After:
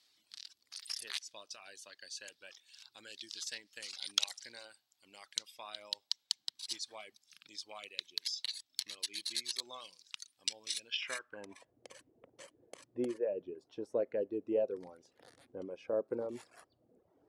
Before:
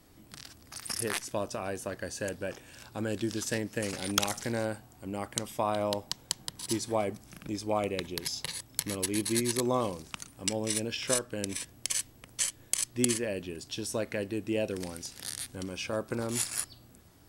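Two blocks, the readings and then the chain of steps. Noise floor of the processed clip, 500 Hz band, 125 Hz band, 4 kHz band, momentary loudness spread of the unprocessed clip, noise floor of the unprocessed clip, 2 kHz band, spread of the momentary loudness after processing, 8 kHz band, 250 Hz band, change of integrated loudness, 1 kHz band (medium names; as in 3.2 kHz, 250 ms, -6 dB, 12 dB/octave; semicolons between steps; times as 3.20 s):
-80 dBFS, -6.5 dB, under -20 dB, -2.0 dB, 11 LU, -57 dBFS, -9.5 dB, 19 LU, -12.5 dB, -13.0 dB, -7.0 dB, -16.0 dB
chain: band-pass sweep 4.1 kHz -> 490 Hz, 10.85–11.75 s; reverb removal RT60 0.94 s; trim +2.5 dB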